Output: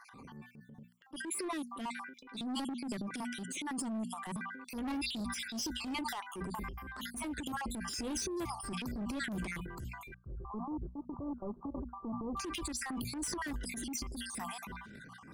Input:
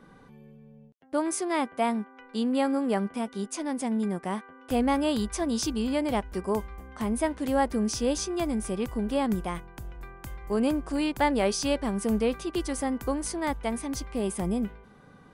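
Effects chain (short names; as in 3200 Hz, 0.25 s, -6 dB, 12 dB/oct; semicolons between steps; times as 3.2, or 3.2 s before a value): random spectral dropouts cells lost 56%; HPF 87 Hz 6 dB/oct; band shelf 580 Hz -9 dB 1.1 oct; notches 60/120/180/240 Hz; hard clip -29.5 dBFS, distortion -11 dB; compressor 5:1, threshold -39 dBFS, peak gain reduction 7.5 dB; soft clip -39 dBFS, distortion -16 dB; transient shaper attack -8 dB, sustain +9 dB; 10.14–12.37 steep low-pass 1200 Hz 96 dB/oct; gain +6 dB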